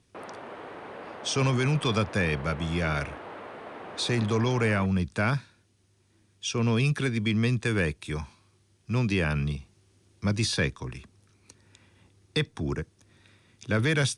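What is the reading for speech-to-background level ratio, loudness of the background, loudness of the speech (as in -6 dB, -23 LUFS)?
14.5 dB, -42.0 LUFS, -27.5 LUFS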